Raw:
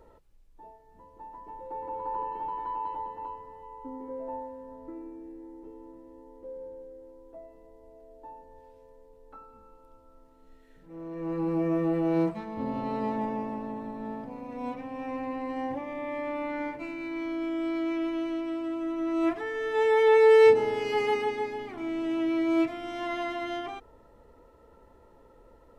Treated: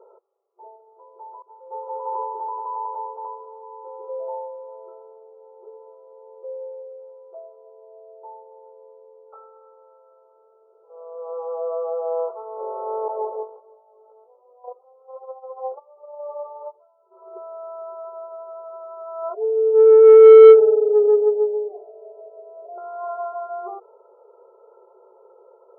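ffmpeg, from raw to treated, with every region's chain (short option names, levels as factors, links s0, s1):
-filter_complex "[0:a]asettb=1/sr,asplit=3[s0][s1][s2];[s0]atrim=end=1.424[s3];[s1]atrim=start=1.42:end=2.24,asetpts=PTS-STARTPTS,afade=t=in:d=0.004:c=qsin,afade=t=out:st=0.816:d=0.004:c=qsin,aeval=exprs='val(0)+0.5*0.00335*sgn(val(0))':c=same,agate=range=0.0224:threshold=0.02:ratio=3:release=100:detection=peak,acrusher=bits=5:mode=log:mix=0:aa=0.000001[s4];[s2]atrim=start=2.236[s5];[s3][s4]acrossfade=d=0.004:c1=hsin:c2=qsin[s6];[s6][s5]acrossfade=d=0.004:c1=qsin:c2=hsin,asettb=1/sr,asplit=3[s7][s8][s9];[s7]atrim=end=13.084[s10];[s8]atrim=start=13.08:end=17.37,asetpts=PTS-STARTPTS,afade=t=in:d=0.004:c=qsin,afade=t=out:st=4.286:d=0.004:c=qsin,agate=range=0.112:threshold=0.0224:ratio=16:release=100:detection=peak,lowshelf=f=500:g=7.5,flanger=delay=1.2:depth=3.3:regen=-3:speed=1.3:shape=sinusoidal[s11];[s9]atrim=start=17.366[s12];[s10][s11]acrossfade=d=0.004:c1=hsin:c2=qsin[s13];[s13][s12]acrossfade=d=0.004:c1=qsin:c2=hsin,asettb=1/sr,asplit=3[s14][s15][s16];[s14]atrim=end=19.344[s17];[s15]atrim=start=19.34:end=22.78,asetpts=PTS-STARTPTS,afade=t=in:d=0.004:c=qsin,afade=t=out:st=3.436:d=0.004:c=qsin,asuperpass=centerf=490:order=8:qfactor=1.3,aecho=1:1:6.8:0.94,atrim=end_sample=151704[s18];[s16]atrim=start=22.776[s19];[s17][s18]acrossfade=d=0.004:c1=hsin:c2=qsin[s20];[s20][s19]acrossfade=d=0.004:c1=qsin:c2=hsin,afftfilt=real='re*between(b*sr/4096,360,1400)':imag='im*between(b*sr/4096,360,1400)':win_size=4096:overlap=0.75,tiltshelf=f=1100:g=7.5,acontrast=35,volume=0.794"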